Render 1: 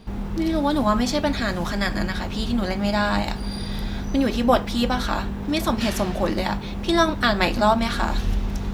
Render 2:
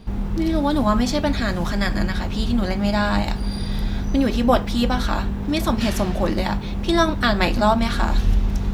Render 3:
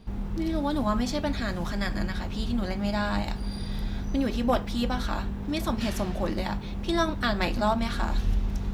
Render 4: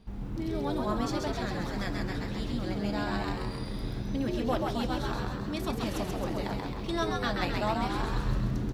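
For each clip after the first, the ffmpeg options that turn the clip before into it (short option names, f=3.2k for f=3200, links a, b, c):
-af "lowshelf=f=170:g=6"
-af "asoftclip=type=hard:threshold=-7dB,volume=-7.5dB"
-filter_complex "[0:a]asplit=9[a][b][c][d][e][f][g][h][i];[b]adelay=133,afreqshift=84,volume=-3.5dB[j];[c]adelay=266,afreqshift=168,volume=-8.2dB[k];[d]adelay=399,afreqshift=252,volume=-13dB[l];[e]adelay=532,afreqshift=336,volume=-17.7dB[m];[f]adelay=665,afreqshift=420,volume=-22.4dB[n];[g]adelay=798,afreqshift=504,volume=-27.2dB[o];[h]adelay=931,afreqshift=588,volume=-31.9dB[p];[i]adelay=1064,afreqshift=672,volume=-36.6dB[q];[a][j][k][l][m][n][o][p][q]amix=inputs=9:normalize=0,volume=-6dB"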